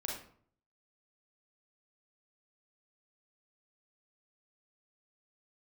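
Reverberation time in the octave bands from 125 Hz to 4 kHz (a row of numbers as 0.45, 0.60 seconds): 0.75, 0.65, 0.55, 0.55, 0.45, 0.35 seconds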